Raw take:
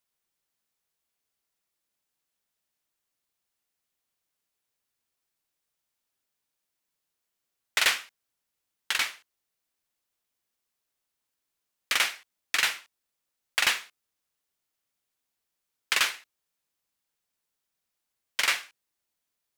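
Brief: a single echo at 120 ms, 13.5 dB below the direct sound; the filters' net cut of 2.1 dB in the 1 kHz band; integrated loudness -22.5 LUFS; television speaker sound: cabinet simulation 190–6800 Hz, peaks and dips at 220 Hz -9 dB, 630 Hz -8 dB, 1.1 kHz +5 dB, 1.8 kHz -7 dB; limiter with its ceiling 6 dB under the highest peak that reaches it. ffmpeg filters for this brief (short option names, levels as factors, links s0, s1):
-af "equalizer=f=1000:t=o:g=-4.5,alimiter=limit=0.158:level=0:latency=1,highpass=f=190:w=0.5412,highpass=f=190:w=1.3066,equalizer=f=220:t=q:w=4:g=-9,equalizer=f=630:t=q:w=4:g=-8,equalizer=f=1100:t=q:w=4:g=5,equalizer=f=1800:t=q:w=4:g=-7,lowpass=f=6800:w=0.5412,lowpass=f=6800:w=1.3066,aecho=1:1:120:0.211,volume=3.16"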